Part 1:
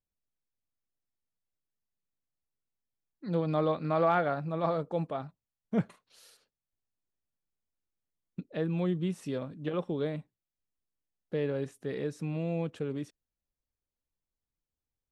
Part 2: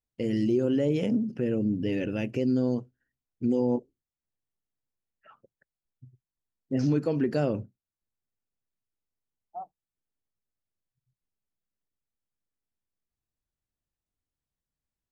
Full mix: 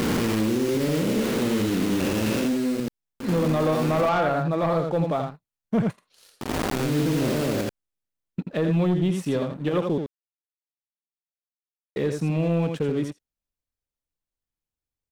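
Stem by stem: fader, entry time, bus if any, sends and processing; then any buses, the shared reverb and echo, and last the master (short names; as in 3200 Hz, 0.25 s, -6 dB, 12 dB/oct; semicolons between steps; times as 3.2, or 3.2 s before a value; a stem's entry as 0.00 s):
+2.5 dB, 0.00 s, muted 9.98–11.96, no send, echo send -7 dB, dry
-5.5 dB, 0.00 s, no send, echo send -4.5 dB, stepped spectrum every 0.4 s; requantised 6-bit, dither none; fast leveller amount 100%; auto duck -12 dB, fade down 1.00 s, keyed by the first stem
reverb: off
echo: echo 83 ms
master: sample leveller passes 2; limiter -16 dBFS, peak gain reduction 5 dB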